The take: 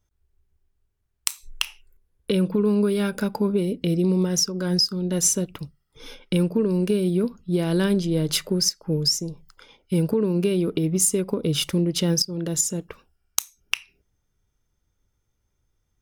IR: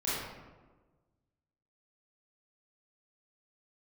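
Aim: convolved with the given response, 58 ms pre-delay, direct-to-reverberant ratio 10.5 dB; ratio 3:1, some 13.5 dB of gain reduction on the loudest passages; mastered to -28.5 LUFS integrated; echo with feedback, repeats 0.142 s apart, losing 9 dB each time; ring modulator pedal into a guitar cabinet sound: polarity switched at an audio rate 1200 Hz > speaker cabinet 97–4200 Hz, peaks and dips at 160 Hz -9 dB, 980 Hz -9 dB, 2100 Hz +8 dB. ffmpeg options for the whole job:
-filter_complex "[0:a]acompressor=threshold=-37dB:ratio=3,aecho=1:1:142|284|426|568:0.355|0.124|0.0435|0.0152,asplit=2[a][b];[1:a]atrim=start_sample=2205,adelay=58[c];[b][c]afir=irnorm=-1:irlink=0,volume=-18dB[d];[a][d]amix=inputs=2:normalize=0,aeval=exprs='val(0)*sgn(sin(2*PI*1200*n/s))':c=same,highpass=97,equalizer=f=160:t=q:w=4:g=-9,equalizer=f=980:t=q:w=4:g=-9,equalizer=f=2.1k:t=q:w=4:g=8,lowpass=f=4.2k:w=0.5412,lowpass=f=4.2k:w=1.3066,volume=8dB"

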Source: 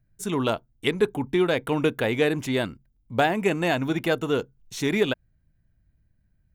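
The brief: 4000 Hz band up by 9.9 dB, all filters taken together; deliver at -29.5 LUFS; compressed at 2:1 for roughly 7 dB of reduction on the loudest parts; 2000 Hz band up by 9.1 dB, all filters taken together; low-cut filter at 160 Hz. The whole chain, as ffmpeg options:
-af "highpass=160,equalizer=f=2k:t=o:g=9,equalizer=f=4k:t=o:g=9,acompressor=threshold=-26dB:ratio=2,volume=-2.5dB"

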